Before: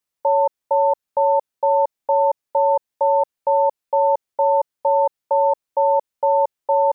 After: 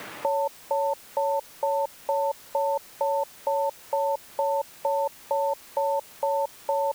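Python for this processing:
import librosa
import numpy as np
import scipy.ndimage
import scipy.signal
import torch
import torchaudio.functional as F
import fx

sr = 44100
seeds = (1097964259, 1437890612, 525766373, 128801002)

p1 = fx.curve_eq(x, sr, hz=(360.0, 510.0, 810.0, 1100.0, 1900.0), db=(0, -4, -4, -7, -5))
p2 = fx.quant_dither(p1, sr, seeds[0], bits=6, dither='triangular')
p3 = p1 + (p2 * 10.0 ** (-4.5 / 20.0))
p4 = fx.band_squash(p3, sr, depth_pct=70)
y = p4 * 10.0 ** (-8.5 / 20.0)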